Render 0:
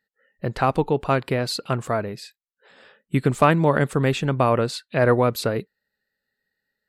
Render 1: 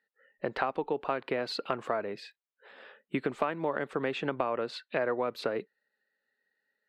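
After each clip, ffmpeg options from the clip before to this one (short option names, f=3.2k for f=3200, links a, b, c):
-filter_complex "[0:a]acrossover=split=250 3900:gain=0.0891 1 0.0891[a][b][c];[a][b][c]amix=inputs=3:normalize=0,acompressor=threshold=-27dB:ratio=6"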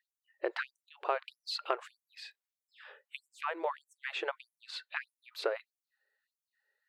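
-af "afftfilt=real='re*gte(b*sr/1024,310*pow(5800/310,0.5+0.5*sin(2*PI*1.6*pts/sr)))':imag='im*gte(b*sr/1024,310*pow(5800/310,0.5+0.5*sin(2*PI*1.6*pts/sr)))':win_size=1024:overlap=0.75"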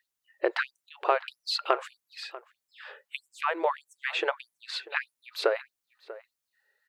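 -filter_complex "[0:a]asplit=2[a][b];[b]adelay=641.4,volume=-17dB,highshelf=f=4k:g=-14.4[c];[a][c]amix=inputs=2:normalize=0,volume=7.5dB"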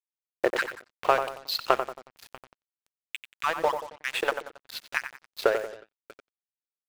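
-filter_complex "[0:a]aeval=exprs='sgn(val(0))*max(abs(val(0))-0.0178,0)':c=same,asplit=2[a][b];[b]adelay=91,lowpass=f=1.9k:p=1,volume=-7.5dB,asplit=2[c][d];[d]adelay=91,lowpass=f=1.9k:p=1,volume=0.42,asplit=2[e][f];[f]adelay=91,lowpass=f=1.9k:p=1,volume=0.42,asplit=2[g][h];[h]adelay=91,lowpass=f=1.9k:p=1,volume=0.42,asplit=2[i][j];[j]adelay=91,lowpass=f=1.9k:p=1,volume=0.42[k];[a][c][e][g][i][k]amix=inputs=6:normalize=0,acrusher=bits=7:mix=0:aa=0.5,volume=3.5dB"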